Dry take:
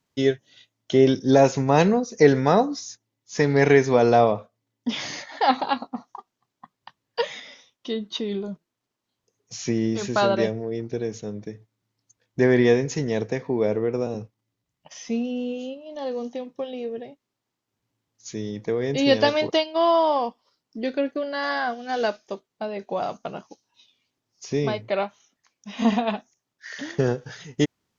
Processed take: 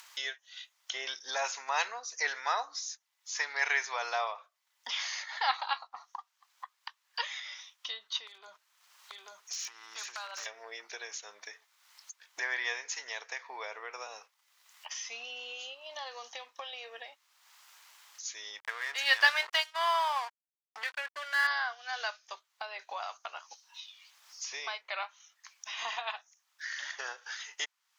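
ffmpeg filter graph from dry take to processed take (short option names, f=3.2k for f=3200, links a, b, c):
-filter_complex "[0:a]asettb=1/sr,asplit=3[a][b][c];[a]atrim=end=8.274[d];[b]atrim=start=8.27:end=10.46,asetpts=PTS-STARTPTS,afade=t=in:d=0.004:c=qsin,afade=t=out:st=2.186:d=0.004:c=qsin,acompressor=threshold=-31dB:ratio=16:attack=3.2:release=140:knee=1:detection=peak,aeval=exprs='0.0355*(abs(mod(val(0)/0.0355+3,4)-2)-1)':c=same,aecho=1:1:837:0.376,atrim=end_sample=96579[e];[c]atrim=start=10.456[f];[d][e]acrossfade=d=0.004:c1=hsin:c2=qsin[g];[g][f]acrossfade=d=0.004:c1=qsin:c2=hsin,asettb=1/sr,asplit=3[h][i][j];[h]atrim=end=18.594[k];[i]atrim=start=18.59:end=21.47,asetpts=PTS-STARTPTS,afade=t=in:d=0.004:c=qsin,afade=t=out:st=2.876:d=0.004:c=qsin,equalizer=f=1.7k:t=o:w=0.73:g=10.5,aeval=exprs='sgn(val(0))*max(abs(val(0))-0.0158,0)':c=same[l];[j]atrim=start=21.466[m];[k][l]acrossfade=d=0.004:c1=hsin:c2=qsin[n];[n][m]acrossfade=d=0.004:c1=qsin:c2=hsin,highpass=f=1k:w=0.5412,highpass=f=1k:w=1.3066,acompressor=mode=upward:threshold=-30dB:ratio=2.5,volume=-3.5dB"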